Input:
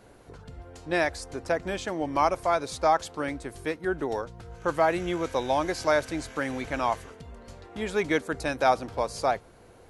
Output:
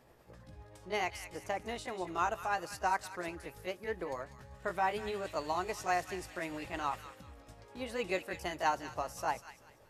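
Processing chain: rotating-head pitch shifter +3 st; feedback echo behind a high-pass 194 ms, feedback 31%, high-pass 1.7 kHz, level -8.5 dB; trim -8 dB

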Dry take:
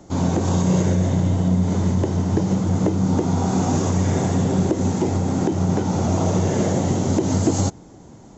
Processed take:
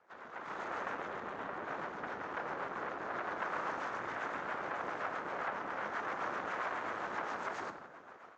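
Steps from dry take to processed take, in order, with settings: rotary cabinet horn 7.5 Hz; whisper effect; saturation -18.5 dBFS, distortion -12 dB; compression 3:1, threshold -29 dBFS, peak gain reduction 6.5 dB; on a send at -6 dB: reverberation, pre-delay 11 ms; on the sum: level rider gain up to 13 dB; peaking EQ 1.6 kHz +3 dB; full-wave rectifier; ladder band-pass 1.8 kHz, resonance 35%; tilt EQ -4.5 dB/octave; trim +3.5 dB

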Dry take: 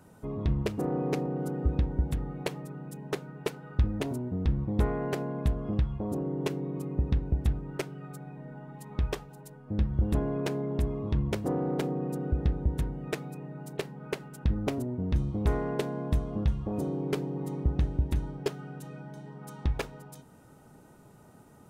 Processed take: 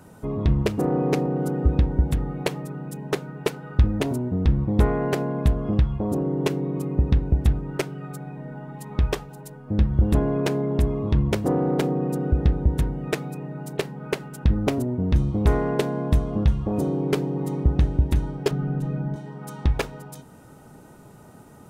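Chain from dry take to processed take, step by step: 18.51–19.16 s: tilt EQ -3.5 dB/octave; trim +7.5 dB

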